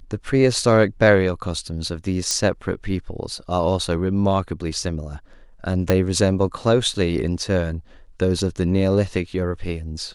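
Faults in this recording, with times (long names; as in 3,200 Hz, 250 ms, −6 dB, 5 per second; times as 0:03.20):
0:02.31: click −8 dBFS
0:05.90: click −4 dBFS
0:06.94: drop-out 3 ms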